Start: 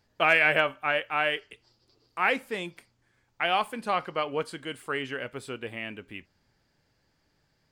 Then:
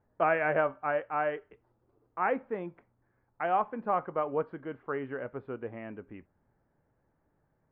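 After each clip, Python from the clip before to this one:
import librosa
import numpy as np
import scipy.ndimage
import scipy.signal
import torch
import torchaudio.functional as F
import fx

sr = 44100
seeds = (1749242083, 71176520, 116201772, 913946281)

y = scipy.signal.sosfilt(scipy.signal.bessel(4, 930.0, 'lowpass', norm='mag', fs=sr, output='sos'), x)
y = fx.low_shelf(y, sr, hz=470.0, db=-5.0)
y = F.gain(torch.from_numpy(y), 3.0).numpy()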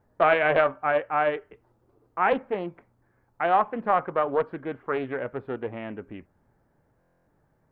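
y = fx.buffer_glitch(x, sr, at_s=(6.99,), block=1024, repeats=11)
y = fx.doppler_dist(y, sr, depth_ms=0.31)
y = F.gain(torch.from_numpy(y), 6.5).numpy()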